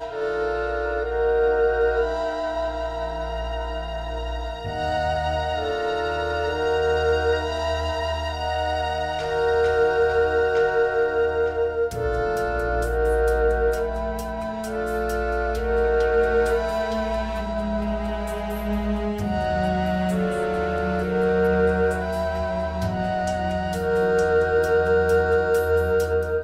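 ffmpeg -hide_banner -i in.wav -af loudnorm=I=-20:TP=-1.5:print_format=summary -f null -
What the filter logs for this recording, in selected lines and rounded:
Input Integrated:    -23.0 LUFS
Input True Peak:     -10.6 dBTP
Input LRA:             4.0 LU
Input Threshold:     -33.0 LUFS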